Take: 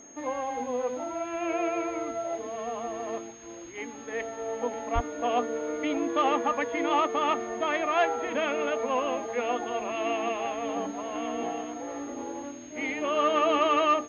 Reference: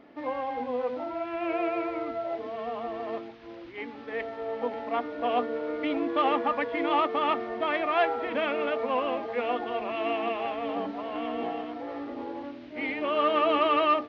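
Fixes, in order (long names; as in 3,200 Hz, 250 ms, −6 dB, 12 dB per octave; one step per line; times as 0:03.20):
notch filter 6,500 Hz, Q 30
0:04.94–0:05.06: high-pass filter 140 Hz 24 dB per octave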